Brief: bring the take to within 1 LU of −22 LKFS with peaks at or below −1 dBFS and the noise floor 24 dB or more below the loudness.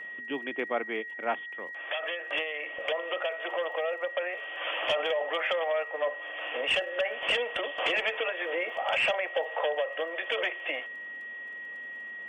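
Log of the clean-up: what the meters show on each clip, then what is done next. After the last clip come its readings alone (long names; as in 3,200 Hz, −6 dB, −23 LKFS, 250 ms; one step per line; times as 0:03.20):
crackle rate 23 per second; interfering tone 1,900 Hz; level of the tone −38 dBFS; integrated loudness −31.0 LKFS; sample peak −16.0 dBFS; target loudness −22.0 LKFS
→ click removal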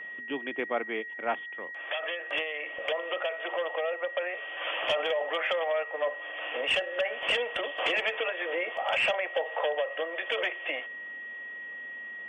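crackle rate 0 per second; interfering tone 1,900 Hz; level of the tone −38 dBFS
→ notch filter 1,900 Hz, Q 30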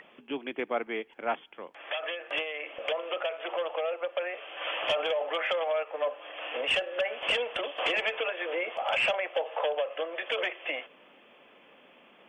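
interfering tone none found; integrated loudness −31.0 LKFS; sample peak −16.5 dBFS; target loudness −22.0 LKFS
→ level +9 dB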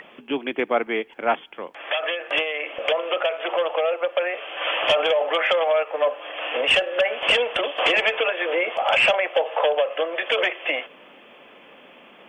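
integrated loudness −22.0 LKFS; sample peak −7.5 dBFS; background noise floor −49 dBFS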